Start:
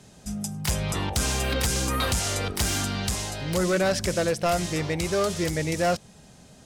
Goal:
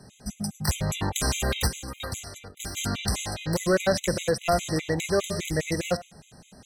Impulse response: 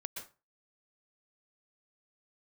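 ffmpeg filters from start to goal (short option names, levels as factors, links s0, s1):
-filter_complex "[0:a]asplit=3[s0][s1][s2];[s0]afade=t=out:st=1.67:d=0.02[s3];[s1]agate=range=0.0224:threshold=0.141:ratio=3:detection=peak,afade=t=in:st=1.67:d=0.02,afade=t=out:st=2.76:d=0.02[s4];[s2]afade=t=in:st=2.76:d=0.02[s5];[s3][s4][s5]amix=inputs=3:normalize=0,asplit=2[s6][s7];[1:a]atrim=start_sample=2205,asetrate=52920,aresample=44100[s8];[s7][s8]afir=irnorm=-1:irlink=0,volume=0.299[s9];[s6][s9]amix=inputs=2:normalize=0,afftfilt=real='re*gt(sin(2*PI*4.9*pts/sr)*(1-2*mod(floor(b*sr/1024/2000),2)),0)':imag='im*gt(sin(2*PI*4.9*pts/sr)*(1-2*mod(floor(b*sr/1024/2000),2)),0)':win_size=1024:overlap=0.75,volume=1.12"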